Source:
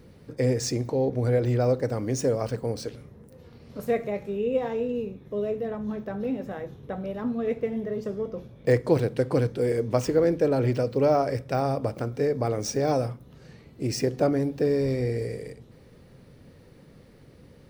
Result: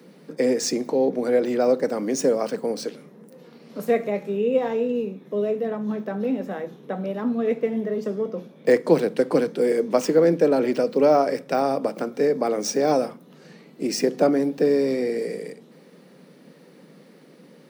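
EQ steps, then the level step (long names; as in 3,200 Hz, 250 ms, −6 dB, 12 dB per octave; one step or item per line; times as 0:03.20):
Butterworth high-pass 160 Hz 72 dB per octave
+4.5 dB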